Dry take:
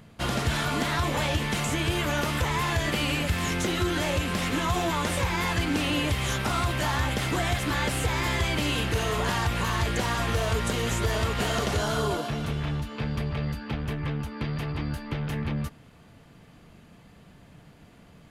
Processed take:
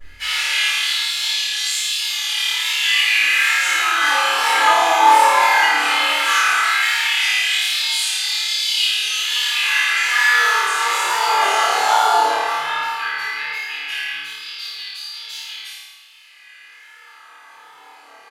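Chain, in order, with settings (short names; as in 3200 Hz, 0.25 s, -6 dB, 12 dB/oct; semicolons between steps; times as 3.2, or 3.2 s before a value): HPF 87 Hz; low shelf 150 Hz -8.5 dB; comb 2.4 ms, depth 74%; limiter -19 dBFS, peak gain reduction 6.5 dB; LFO high-pass sine 0.15 Hz 800–4000 Hz; vibrato 1.2 Hz 79 cents; chorus voices 4, 0.81 Hz, delay 11 ms, depth 2.3 ms; flutter echo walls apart 4.7 m, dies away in 1 s; shoebox room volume 220 m³, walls mixed, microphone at 5.9 m; gain -5.5 dB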